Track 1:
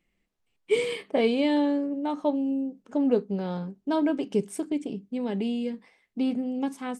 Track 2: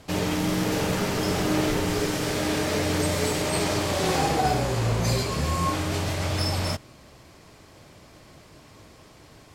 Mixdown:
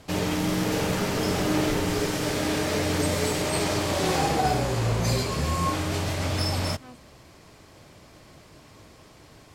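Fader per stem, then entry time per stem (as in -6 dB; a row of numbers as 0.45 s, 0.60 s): -14.5 dB, -0.5 dB; 0.00 s, 0.00 s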